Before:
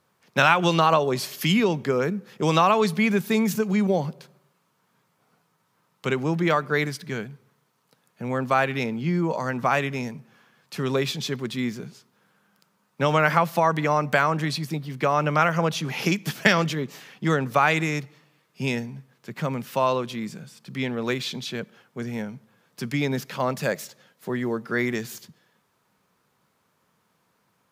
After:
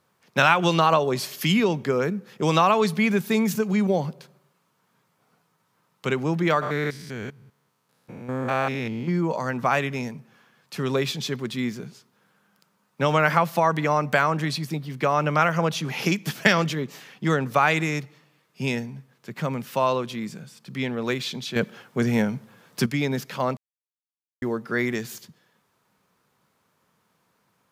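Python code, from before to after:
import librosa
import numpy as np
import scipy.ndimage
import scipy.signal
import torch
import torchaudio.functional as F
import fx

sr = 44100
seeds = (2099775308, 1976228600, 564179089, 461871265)

y = fx.spec_steps(x, sr, hold_ms=200, at=(6.61, 9.08), fade=0.02)
y = fx.edit(y, sr, fx.clip_gain(start_s=21.56, length_s=1.3, db=9.0),
    fx.silence(start_s=23.57, length_s=0.85), tone=tone)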